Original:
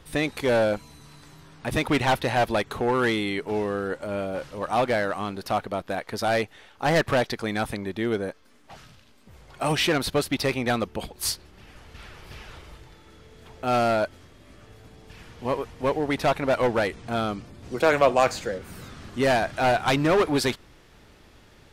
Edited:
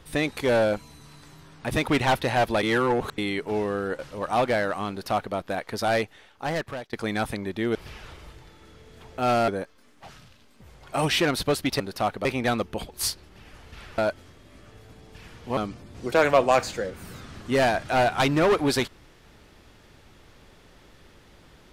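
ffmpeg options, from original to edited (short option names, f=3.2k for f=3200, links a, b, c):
-filter_complex "[0:a]asplit=11[a][b][c][d][e][f][g][h][i][j][k];[a]atrim=end=2.632[l];[b]atrim=start=2.628:end=3.182,asetpts=PTS-STARTPTS,areverse[m];[c]atrim=start=3.178:end=3.992[n];[d]atrim=start=4.388:end=7.33,asetpts=PTS-STARTPTS,afade=t=out:st=1.972:d=0.97:silence=0.0794328[o];[e]atrim=start=7.33:end=8.152,asetpts=PTS-STARTPTS,afade=t=in:d=0.004:c=hsin:silence=0.0794328[p];[f]atrim=start=12.198:end=13.932[q];[g]atrim=start=8.148:end=10.472[r];[h]atrim=start=5.298:end=5.752[s];[i]atrim=start=10.468:end=12.202[t];[j]atrim=start=13.928:end=15.522[u];[k]atrim=start=17.248[v];[l][m]acrossfade=d=0.004:c1=hsin:c2=hsin[w];[w][n]acrossfade=d=0.004:c1=hsin:c2=hsin[x];[o][p]concat=n=2:v=0:a=1[y];[x][y]acrossfade=d=0.004:c1=hsin:c2=hsin[z];[z][q]acrossfade=d=0.004:c1=hsin:c2=hsin[aa];[aa][r]acrossfade=d=0.004:c1=hsin:c2=hsin[ab];[ab][s]acrossfade=d=0.004:c1=hsin:c2=hsin[ac];[ac][t]acrossfade=d=0.004:c1=hsin:c2=hsin[ad];[ad][u]acrossfade=d=0.004:c1=hsin:c2=hsin[ae];[ae][v]acrossfade=d=0.004:c1=hsin:c2=hsin"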